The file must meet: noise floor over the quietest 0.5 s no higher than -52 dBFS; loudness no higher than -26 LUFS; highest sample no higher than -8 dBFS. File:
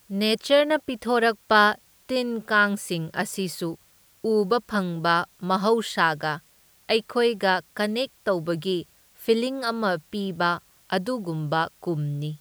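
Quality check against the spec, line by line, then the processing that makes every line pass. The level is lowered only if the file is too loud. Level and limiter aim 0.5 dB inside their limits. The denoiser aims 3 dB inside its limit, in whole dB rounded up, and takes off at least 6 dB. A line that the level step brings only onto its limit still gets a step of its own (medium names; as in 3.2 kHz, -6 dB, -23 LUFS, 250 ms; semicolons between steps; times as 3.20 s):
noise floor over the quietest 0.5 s -58 dBFS: pass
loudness -24.5 LUFS: fail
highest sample -4.5 dBFS: fail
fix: trim -2 dB; peak limiter -8.5 dBFS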